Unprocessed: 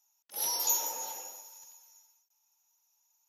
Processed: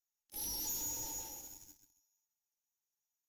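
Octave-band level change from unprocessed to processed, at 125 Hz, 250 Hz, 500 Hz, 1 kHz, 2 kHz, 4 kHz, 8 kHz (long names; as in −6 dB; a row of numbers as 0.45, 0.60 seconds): can't be measured, +5.0 dB, −10.0 dB, −13.5 dB, −9.0 dB, −8.5 dB, −7.0 dB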